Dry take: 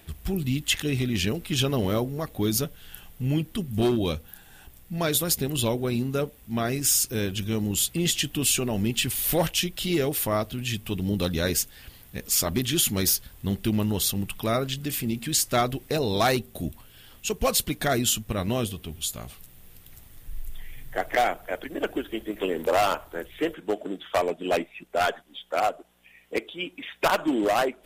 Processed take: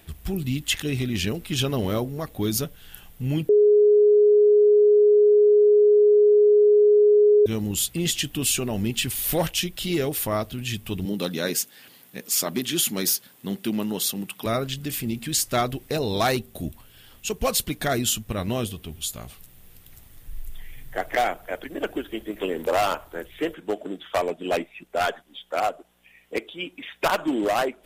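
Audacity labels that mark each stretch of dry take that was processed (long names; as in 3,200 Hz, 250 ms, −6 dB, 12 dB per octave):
3.490000	7.460000	beep over 417 Hz −12.5 dBFS
11.050000	14.460000	high-pass filter 170 Hz 24 dB per octave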